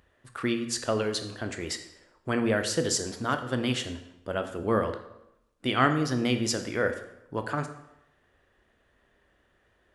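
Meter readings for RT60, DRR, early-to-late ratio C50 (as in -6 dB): 0.85 s, 7.0 dB, 10.0 dB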